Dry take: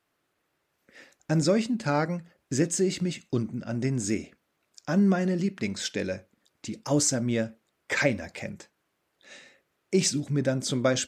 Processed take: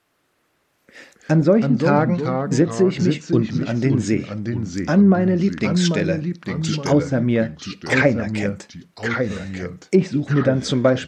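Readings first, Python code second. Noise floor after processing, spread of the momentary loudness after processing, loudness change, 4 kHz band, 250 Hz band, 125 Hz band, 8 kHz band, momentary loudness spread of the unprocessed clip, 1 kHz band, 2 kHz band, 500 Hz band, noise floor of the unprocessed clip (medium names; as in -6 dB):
-67 dBFS, 10 LU, +8.0 dB, +4.0 dB, +9.5 dB, +10.0 dB, -4.0 dB, 14 LU, +9.0 dB, +8.0 dB, +9.0 dB, -77 dBFS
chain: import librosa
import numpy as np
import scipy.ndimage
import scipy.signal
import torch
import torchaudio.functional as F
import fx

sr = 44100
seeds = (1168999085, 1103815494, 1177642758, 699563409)

y = fx.env_lowpass_down(x, sr, base_hz=1300.0, full_db=-19.5)
y = fx.echo_pitch(y, sr, ms=164, semitones=-2, count=2, db_per_echo=-6.0)
y = y * 10.0 ** (8.5 / 20.0)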